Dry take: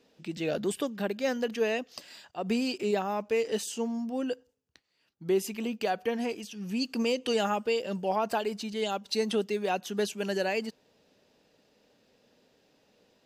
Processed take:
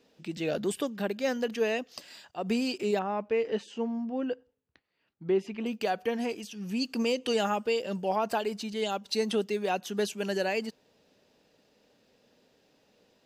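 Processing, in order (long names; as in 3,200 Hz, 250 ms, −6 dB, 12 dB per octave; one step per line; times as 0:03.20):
0:02.99–0:05.66: low-pass filter 2,600 Hz 12 dB per octave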